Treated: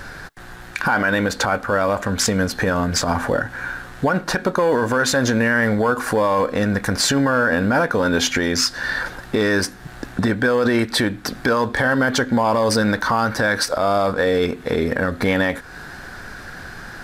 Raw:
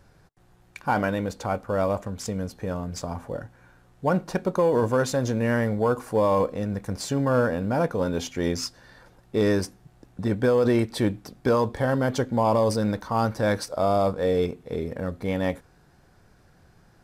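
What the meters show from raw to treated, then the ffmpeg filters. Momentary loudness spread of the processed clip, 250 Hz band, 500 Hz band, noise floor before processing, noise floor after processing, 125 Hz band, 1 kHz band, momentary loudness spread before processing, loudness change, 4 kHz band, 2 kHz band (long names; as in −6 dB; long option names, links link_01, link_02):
14 LU, +5.5 dB, +4.0 dB, −58 dBFS, −38 dBFS, +2.5 dB, +6.5 dB, 10 LU, +6.0 dB, +14.0 dB, +15.0 dB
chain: -af "equalizer=frequency=250:width_type=o:width=0.67:gain=6,equalizer=frequency=1600:width_type=o:width=0.67:gain=11,equalizer=frequency=4000:width_type=o:width=0.67:gain=4,acompressor=threshold=-34dB:ratio=3,equalizer=frequency=150:width=0.37:gain=-7.5,alimiter=level_in=29dB:limit=-1dB:release=50:level=0:latency=1,volume=-7.5dB"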